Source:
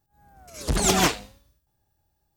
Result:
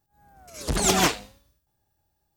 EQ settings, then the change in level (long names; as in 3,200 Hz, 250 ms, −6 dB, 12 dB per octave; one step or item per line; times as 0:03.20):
low-shelf EQ 150 Hz −3.5 dB
0.0 dB